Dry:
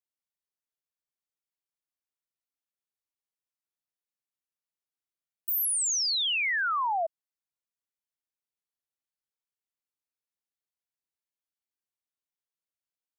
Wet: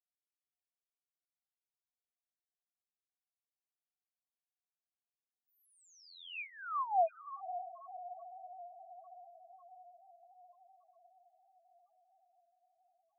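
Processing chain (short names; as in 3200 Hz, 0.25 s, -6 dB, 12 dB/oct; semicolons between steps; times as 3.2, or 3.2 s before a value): vowel filter a; diffused feedback echo 0.553 s, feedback 67%, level -7.5 dB; loudest bins only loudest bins 1; gain +7.5 dB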